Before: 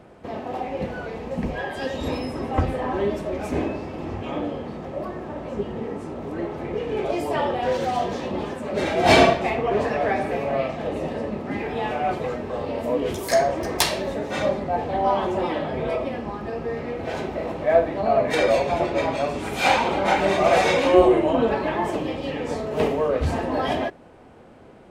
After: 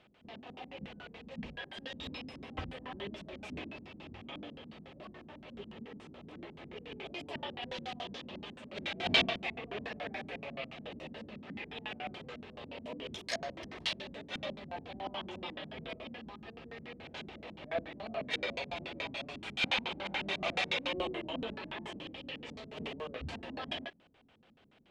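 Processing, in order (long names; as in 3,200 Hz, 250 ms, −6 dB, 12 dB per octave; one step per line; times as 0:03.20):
first-order pre-emphasis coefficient 0.9
auto-filter low-pass square 7 Hz 220–3,200 Hz
level −1 dB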